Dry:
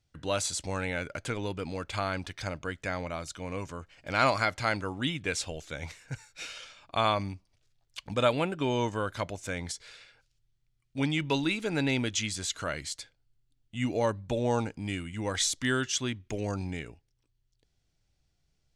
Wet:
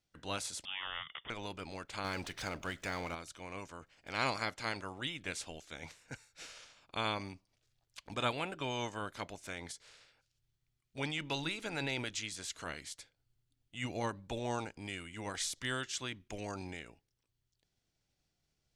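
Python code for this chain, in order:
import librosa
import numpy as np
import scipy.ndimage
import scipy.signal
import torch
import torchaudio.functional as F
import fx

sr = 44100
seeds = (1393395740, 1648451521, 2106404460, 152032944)

y = fx.spec_clip(x, sr, under_db=13)
y = fx.freq_invert(y, sr, carrier_hz=3500, at=(0.65, 1.3))
y = fx.power_curve(y, sr, exponent=0.7, at=(2.04, 3.15))
y = y * 10.0 ** (-9.0 / 20.0)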